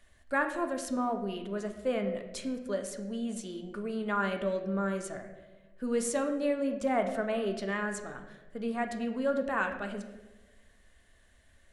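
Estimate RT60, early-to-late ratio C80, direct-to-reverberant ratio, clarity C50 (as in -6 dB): 1.2 s, 10.5 dB, 5.0 dB, 8.5 dB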